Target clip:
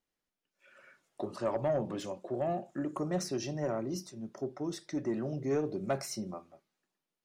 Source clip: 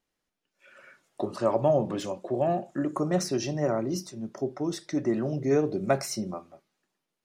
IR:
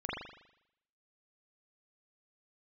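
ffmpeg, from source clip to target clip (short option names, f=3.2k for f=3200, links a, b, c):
-af "asoftclip=type=tanh:threshold=-16dB,volume=-6dB"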